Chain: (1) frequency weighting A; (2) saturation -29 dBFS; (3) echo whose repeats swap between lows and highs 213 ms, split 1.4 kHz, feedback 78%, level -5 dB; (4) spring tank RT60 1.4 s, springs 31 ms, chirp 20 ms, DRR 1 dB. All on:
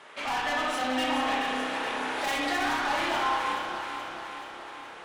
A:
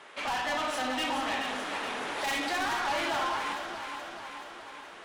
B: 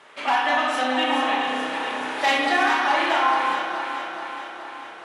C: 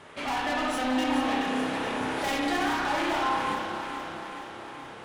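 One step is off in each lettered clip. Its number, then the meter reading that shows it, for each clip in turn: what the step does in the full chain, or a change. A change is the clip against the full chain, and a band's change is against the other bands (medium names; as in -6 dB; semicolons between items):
4, 250 Hz band -2.5 dB; 2, distortion -6 dB; 1, 125 Hz band +7.5 dB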